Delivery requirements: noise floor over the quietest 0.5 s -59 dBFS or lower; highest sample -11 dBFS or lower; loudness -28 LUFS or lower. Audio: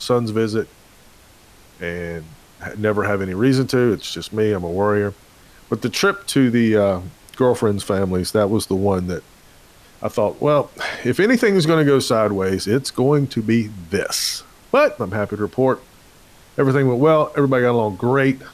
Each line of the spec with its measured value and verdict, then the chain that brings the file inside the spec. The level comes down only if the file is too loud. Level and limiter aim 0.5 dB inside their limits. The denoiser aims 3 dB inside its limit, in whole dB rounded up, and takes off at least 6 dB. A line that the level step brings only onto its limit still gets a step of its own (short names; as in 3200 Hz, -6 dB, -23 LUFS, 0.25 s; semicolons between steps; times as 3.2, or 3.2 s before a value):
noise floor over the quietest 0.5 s -48 dBFS: fail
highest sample -5.5 dBFS: fail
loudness -19.0 LUFS: fail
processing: denoiser 6 dB, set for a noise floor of -48 dBFS; gain -9.5 dB